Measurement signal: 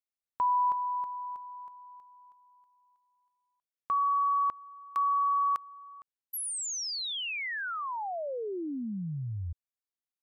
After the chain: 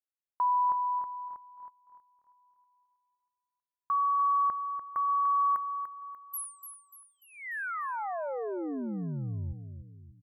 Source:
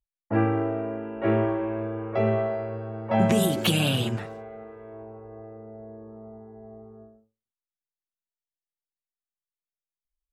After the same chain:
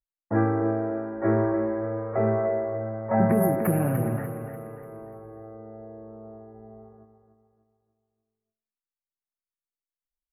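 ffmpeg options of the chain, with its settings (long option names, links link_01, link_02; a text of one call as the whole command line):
ffmpeg -i in.wav -filter_complex "[0:a]agate=range=-8dB:threshold=-48dB:ratio=16:release=97:detection=peak,asuperstop=centerf=4800:order=12:qfactor=0.57,asplit=2[link_01][link_02];[link_02]aecho=0:1:294|588|882|1176|1470:0.355|0.153|0.0656|0.0282|0.0121[link_03];[link_01][link_03]amix=inputs=2:normalize=0" out.wav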